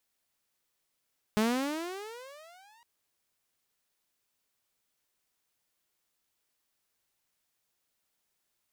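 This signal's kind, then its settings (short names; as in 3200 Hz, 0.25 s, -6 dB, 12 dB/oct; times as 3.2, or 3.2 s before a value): gliding synth tone saw, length 1.46 s, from 209 Hz, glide +26.5 st, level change -36 dB, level -20.5 dB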